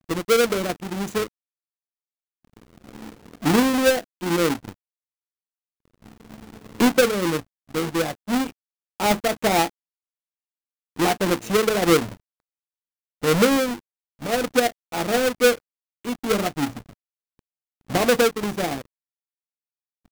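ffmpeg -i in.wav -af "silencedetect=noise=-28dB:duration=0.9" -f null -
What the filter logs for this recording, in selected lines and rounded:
silence_start: 1.24
silence_end: 3.44 | silence_duration: 2.20
silence_start: 4.69
silence_end: 6.80 | silence_duration: 2.11
silence_start: 9.67
silence_end: 10.99 | silence_duration: 1.32
silence_start: 12.04
silence_end: 13.23 | silence_duration: 1.19
silence_start: 16.70
silence_end: 17.90 | silence_duration: 1.20
silence_start: 18.80
silence_end: 20.11 | silence_duration: 1.31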